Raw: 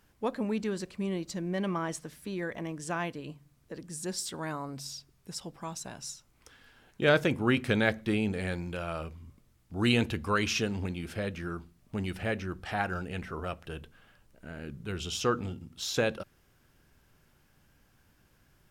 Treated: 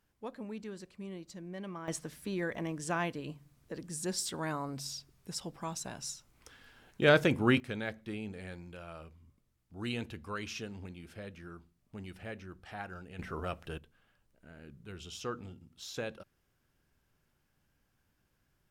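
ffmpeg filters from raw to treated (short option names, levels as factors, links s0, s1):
-af "asetnsamples=n=441:p=0,asendcmd='1.88 volume volume 0dB;7.6 volume volume -11.5dB;13.19 volume volume -1.5dB;13.78 volume volume -10.5dB',volume=0.282"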